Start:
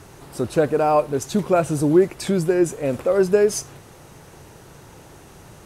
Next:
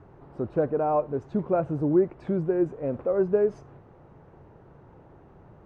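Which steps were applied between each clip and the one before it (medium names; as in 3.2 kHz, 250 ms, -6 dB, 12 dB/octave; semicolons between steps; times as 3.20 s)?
low-pass 1.1 kHz 12 dB/octave; trim -6 dB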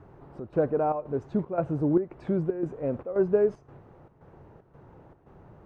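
square tremolo 1.9 Hz, depth 65%, duty 75%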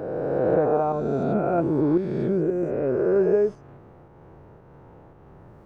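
reverse spectral sustain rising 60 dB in 2.57 s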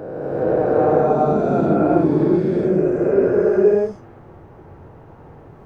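gated-style reverb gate 450 ms rising, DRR -5.5 dB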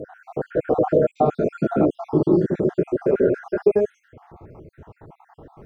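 random holes in the spectrogram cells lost 60%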